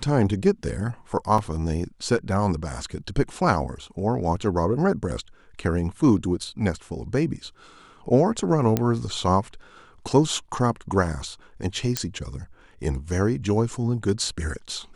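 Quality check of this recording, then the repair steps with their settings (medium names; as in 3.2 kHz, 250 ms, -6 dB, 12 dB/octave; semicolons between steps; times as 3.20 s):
1.38 s: dropout 3.5 ms
8.77 s: pop -8 dBFS
11.97 s: pop -7 dBFS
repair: de-click; interpolate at 1.38 s, 3.5 ms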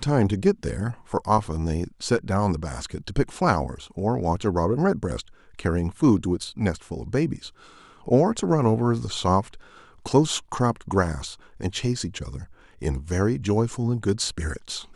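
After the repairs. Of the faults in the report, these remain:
nothing left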